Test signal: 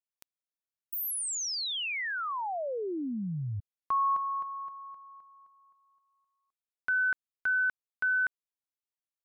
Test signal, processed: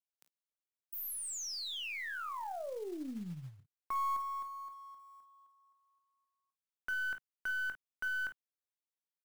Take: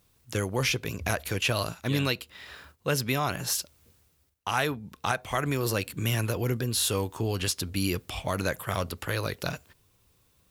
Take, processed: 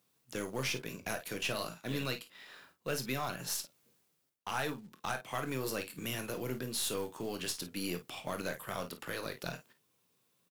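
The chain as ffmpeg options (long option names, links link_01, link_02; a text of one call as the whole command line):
ffmpeg -i in.wav -af "highpass=frequency=150:width=0.5412,highpass=frequency=150:width=1.3066,aeval=exprs='0.299*(cos(1*acos(clip(val(0)/0.299,-1,1)))-cos(1*PI/2))+0.0422*(cos(4*acos(clip(val(0)/0.299,-1,1)))-cos(4*PI/2))':channel_layout=same,aecho=1:1:23|39|52:0.266|0.178|0.224,acrusher=bits=5:mode=log:mix=0:aa=0.000001,asoftclip=type=tanh:threshold=-14.5dB,volume=-8dB" out.wav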